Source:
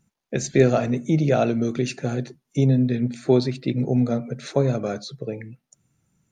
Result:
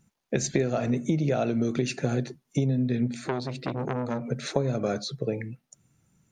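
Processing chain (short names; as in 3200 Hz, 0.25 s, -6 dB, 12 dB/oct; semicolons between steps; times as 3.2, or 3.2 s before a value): compressor 12:1, threshold -23 dBFS, peak gain reduction 13.5 dB; 3.26–4.3 core saturation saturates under 1300 Hz; gain +2 dB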